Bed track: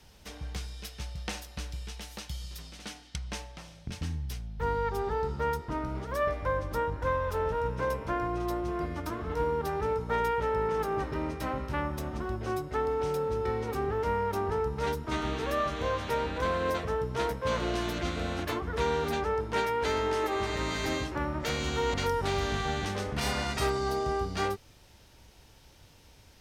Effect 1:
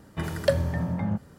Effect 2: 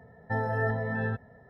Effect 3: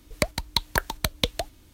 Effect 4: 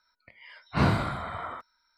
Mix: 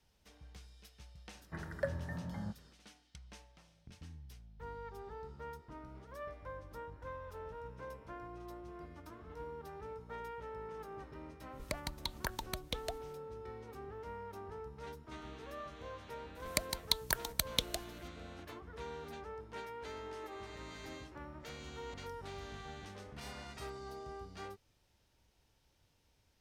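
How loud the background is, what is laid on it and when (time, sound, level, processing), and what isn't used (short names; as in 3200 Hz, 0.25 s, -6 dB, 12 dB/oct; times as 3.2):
bed track -17 dB
1.35 add 1 -14.5 dB + resonant high shelf 2300 Hz -9 dB, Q 3
11.49 add 3 -8.5 dB, fades 0.10 s + limiter -13.5 dBFS
16.35 add 3 -14 dB + high shelf 3100 Hz +11.5 dB
not used: 2, 4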